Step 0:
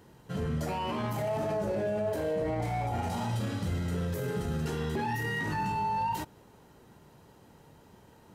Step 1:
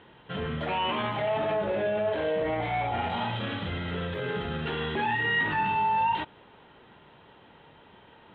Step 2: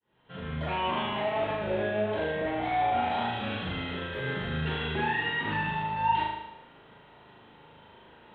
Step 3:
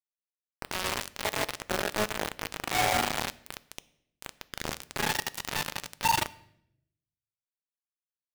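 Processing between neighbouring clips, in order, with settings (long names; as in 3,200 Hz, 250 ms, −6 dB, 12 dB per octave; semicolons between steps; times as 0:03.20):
drawn EQ curve 120 Hz 0 dB, 3,600 Hz +15 dB, 5,200 Hz −27 dB; level −3.5 dB
fade in at the beginning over 0.74 s; flutter between parallel walls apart 6.5 metres, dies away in 0.88 s; level −3 dB
bit reduction 4 bits; on a send at −17 dB: convolution reverb RT60 0.75 s, pre-delay 3 ms; on the sum: level −1 dB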